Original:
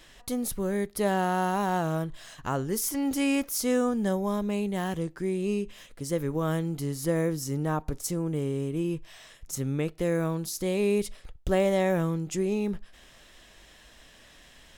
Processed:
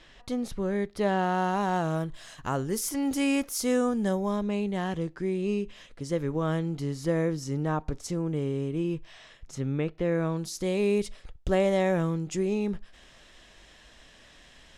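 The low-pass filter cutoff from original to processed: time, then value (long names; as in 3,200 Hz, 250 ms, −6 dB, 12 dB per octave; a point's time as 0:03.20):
0:01.14 4,700 Hz
0:02.21 11,000 Hz
0:03.99 11,000 Hz
0:04.51 5,700 Hz
0:08.96 5,700 Hz
0:10.06 3,100 Hz
0:10.44 7,800 Hz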